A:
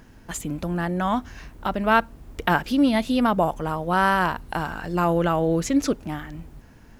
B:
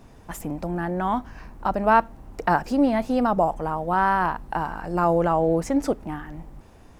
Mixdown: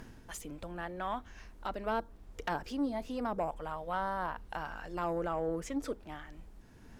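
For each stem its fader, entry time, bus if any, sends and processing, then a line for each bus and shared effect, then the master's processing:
+0.5 dB, 0.00 s, no send, treble ducked by the level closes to 950 Hz, closed at -15 dBFS; soft clip -13 dBFS, distortion -20 dB; auto duck -11 dB, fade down 0.30 s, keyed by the second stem
-10.5 dB, 0.00 s, polarity flipped, no send, FFT band-reject 490–3100 Hz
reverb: off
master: dry

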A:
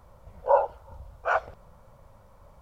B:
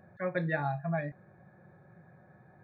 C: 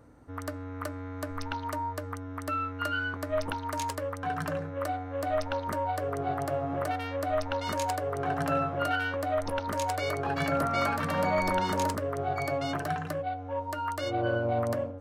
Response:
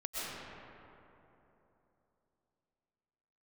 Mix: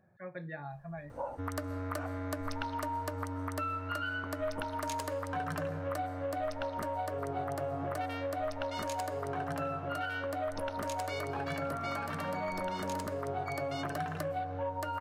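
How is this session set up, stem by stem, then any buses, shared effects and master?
-13.5 dB, 0.70 s, no send, dry
-10.5 dB, 0.00 s, no send, dry
+0.5 dB, 1.10 s, send -15.5 dB, vocal rider within 4 dB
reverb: on, RT60 3.2 s, pre-delay 85 ms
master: compressor 2.5:1, threshold -36 dBFS, peak gain reduction 9 dB

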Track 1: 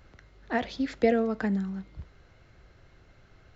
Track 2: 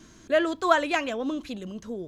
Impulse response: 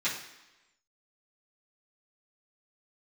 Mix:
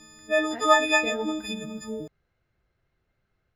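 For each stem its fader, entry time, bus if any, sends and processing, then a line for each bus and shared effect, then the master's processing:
0.9 s -15.5 dB -> 1.4 s -22 dB, 0.00 s, send -15 dB, dry
-3.5 dB, 0.00 s, no send, frequency quantiser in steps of 6 st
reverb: on, RT60 1.0 s, pre-delay 3 ms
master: high shelf 5000 Hz -5.5 dB; AGC gain up to 4 dB

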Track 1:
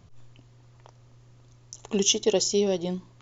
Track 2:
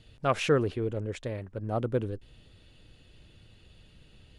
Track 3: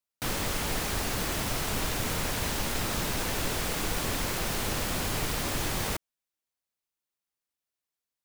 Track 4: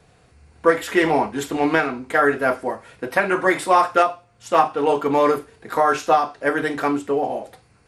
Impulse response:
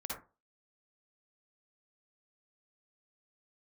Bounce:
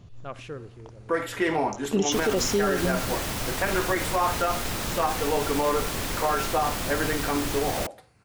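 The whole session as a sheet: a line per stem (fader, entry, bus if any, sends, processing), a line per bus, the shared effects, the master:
+2.5 dB, 0.00 s, no send, tilt shelf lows +3.5 dB, about 660 Hz
-8.5 dB, 0.00 s, send -20.5 dB, auto duck -10 dB, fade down 0.80 s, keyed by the first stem
+0.5 dB, 1.90 s, no send, dry
-6.5 dB, 0.45 s, send -15 dB, dry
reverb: on, RT60 0.30 s, pre-delay 47 ms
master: limiter -14.5 dBFS, peak gain reduction 8 dB

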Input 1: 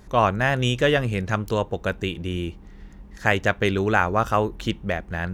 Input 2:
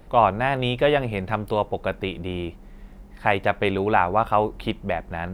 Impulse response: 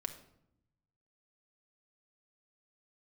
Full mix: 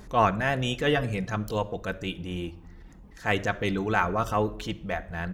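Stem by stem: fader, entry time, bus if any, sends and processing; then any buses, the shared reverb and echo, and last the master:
+1.0 dB, 0.00 s, send -8.5 dB, reverb removal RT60 0.67 s; transient shaper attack -7 dB, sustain +3 dB; auto duck -10 dB, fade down 0.35 s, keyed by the second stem
-14.0 dB, 4.7 ms, no send, steep high-pass 160 Hz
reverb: on, RT60 0.75 s, pre-delay 5 ms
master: dry

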